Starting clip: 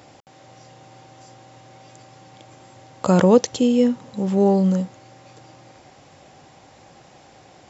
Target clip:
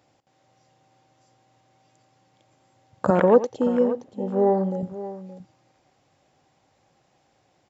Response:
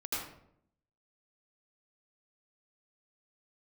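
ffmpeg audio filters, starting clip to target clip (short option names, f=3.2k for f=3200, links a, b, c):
-filter_complex "[0:a]afwtdn=0.0355,asettb=1/sr,asplit=3[a][b][c];[a]atrim=end=3.104[d];[b]atrim=start=3.1:end=4.83,asetpts=PTS-STARTPTS,afade=t=in:d=0.004:c=qsin,afade=t=out:st=1.726:d=0.004:c=qsin,bass=f=250:g=-12,treble=f=4k:g=-6[e];[c]atrim=start=4.826[f];[d][e]acrossfade=d=0.004:c1=hsin:c2=qsin[g];[g][f]acrossfade=d=0.004:c1=qsin:c2=hsin,aecho=1:1:88|573:0.178|0.2"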